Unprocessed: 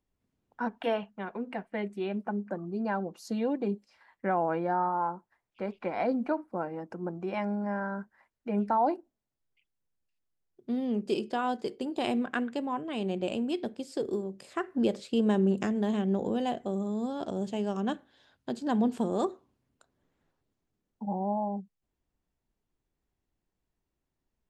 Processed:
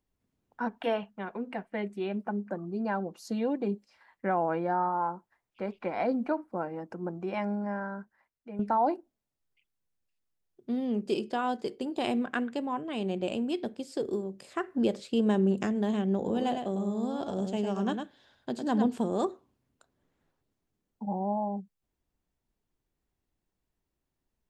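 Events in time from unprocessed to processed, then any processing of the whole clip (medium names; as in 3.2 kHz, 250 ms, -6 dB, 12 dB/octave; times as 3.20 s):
7.52–8.59 s: fade out, to -12 dB
16.18–18.86 s: delay 104 ms -5.5 dB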